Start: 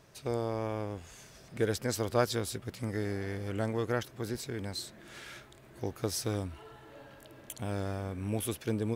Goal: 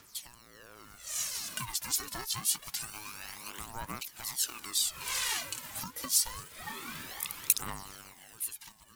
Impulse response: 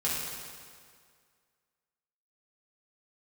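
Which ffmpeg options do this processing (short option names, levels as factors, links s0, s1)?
-filter_complex "[0:a]asplit=2[s0][s1];[s1]acrusher=bits=4:mode=log:mix=0:aa=0.000001,volume=0.501[s2];[s0][s2]amix=inputs=2:normalize=0,acompressor=threshold=0.00891:ratio=10,highpass=610,dynaudnorm=f=160:g=13:m=3.76,highshelf=f=2900:g=10,aphaser=in_gain=1:out_gain=1:delay=2.8:decay=0.71:speed=0.26:type=triangular,highshelf=f=6500:g=8,aeval=exprs='val(0)*sin(2*PI*590*n/s+590*0.25/2*sin(2*PI*2*n/s))':c=same,volume=0.596"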